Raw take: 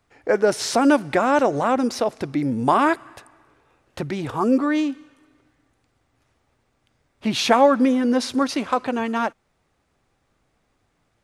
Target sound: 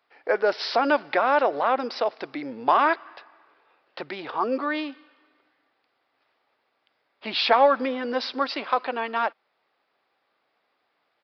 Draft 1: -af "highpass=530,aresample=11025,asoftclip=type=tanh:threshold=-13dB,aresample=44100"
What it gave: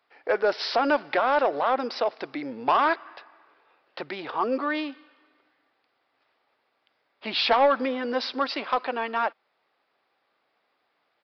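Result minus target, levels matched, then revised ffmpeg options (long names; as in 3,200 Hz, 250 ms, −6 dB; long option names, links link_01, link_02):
soft clipping: distortion +12 dB
-af "highpass=530,aresample=11025,asoftclip=type=tanh:threshold=-5dB,aresample=44100"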